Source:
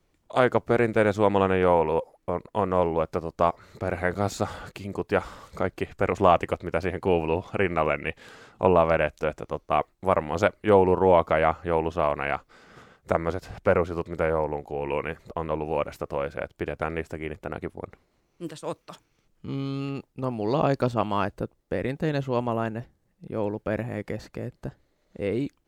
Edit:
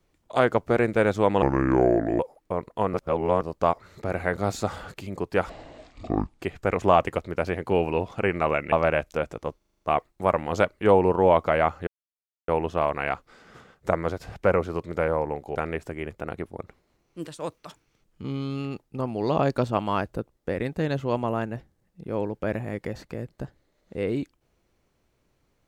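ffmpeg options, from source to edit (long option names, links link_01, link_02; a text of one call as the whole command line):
ffmpeg -i in.wav -filter_complex "[0:a]asplit=16[link_01][link_02][link_03][link_04][link_05][link_06][link_07][link_08][link_09][link_10][link_11][link_12][link_13][link_14][link_15][link_16];[link_01]atrim=end=1.424[link_17];[link_02]atrim=start=1.42:end=1.97,asetpts=PTS-STARTPTS,asetrate=31311,aresample=44100[link_18];[link_03]atrim=start=1.966:end=2.712[link_19];[link_04]atrim=start=2.708:end=3.192,asetpts=PTS-STARTPTS,areverse[link_20];[link_05]atrim=start=3.188:end=5.274[link_21];[link_06]atrim=start=5.27:end=5.78,asetpts=PTS-STARTPTS,asetrate=24255,aresample=44100[link_22];[link_07]atrim=start=5.776:end=8.082[link_23];[link_08]atrim=start=8.788:end=9.682[link_24];[link_09]atrim=start=9.638:end=9.682[link_25];[link_10]atrim=start=9.638:end=9.682[link_26];[link_11]atrim=start=9.638:end=9.682[link_27];[link_12]atrim=start=9.638:end=9.682[link_28];[link_13]atrim=start=9.638:end=9.682[link_29];[link_14]atrim=start=9.638:end=11.7,asetpts=PTS-STARTPTS,afade=type=out:start_time=2.058:duration=0.004:curve=hsin,apad=pad_dur=0.61[link_30];[link_15]atrim=start=11.7:end=14.772,asetpts=PTS-STARTPTS,afade=type=in:duration=0.004:curve=hsin[link_31];[link_16]atrim=start=16.788[link_32];[link_17][link_18]acrossfade=duration=0.004:curve1=hsin:curve2=hsin[link_33];[link_33][link_19]acrossfade=duration=0.004:curve1=hsin:curve2=hsin[link_34];[link_34][link_20]acrossfade=duration=0.004:curve1=hsin:curve2=hsin[link_35];[link_35][link_21]acrossfade=duration=0.004:curve1=hsin:curve2=hsin[link_36];[link_36][link_22]acrossfade=duration=0.004:curve1=hsin:curve2=hsin[link_37];[link_37][link_23]acrossfade=duration=0.004:curve1=hsin:curve2=hsin[link_38];[link_38][link_24]acrossfade=duration=0.004:curve1=hsin:curve2=hsin[link_39];[link_39][link_25]acrossfade=duration=0.004:curve1=hsin:curve2=hsin[link_40];[link_40][link_26]acrossfade=duration=0.004:curve1=hsin:curve2=hsin[link_41];[link_41][link_27]acrossfade=duration=0.004:curve1=hsin:curve2=hsin[link_42];[link_42][link_28]acrossfade=duration=0.004:curve1=hsin:curve2=hsin[link_43];[link_43][link_29]acrossfade=duration=0.004:curve1=hsin:curve2=hsin[link_44];[link_30][link_31]concat=n=2:v=0:a=1[link_45];[link_44][link_45]acrossfade=duration=0.004:curve1=hsin:curve2=hsin[link_46];[link_46][link_32]acrossfade=duration=0.004:curve1=hsin:curve2=hsin" out.wav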